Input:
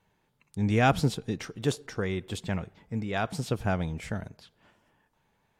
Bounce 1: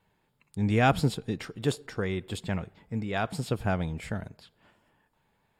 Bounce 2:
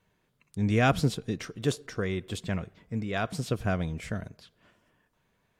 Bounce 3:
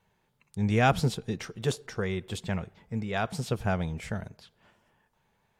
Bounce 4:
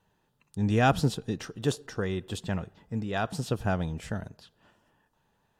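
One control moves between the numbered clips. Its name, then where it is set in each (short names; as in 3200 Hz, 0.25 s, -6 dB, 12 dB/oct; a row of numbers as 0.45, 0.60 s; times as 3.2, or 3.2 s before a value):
notch, frequency: 6000, 850, 290, 2200 Hz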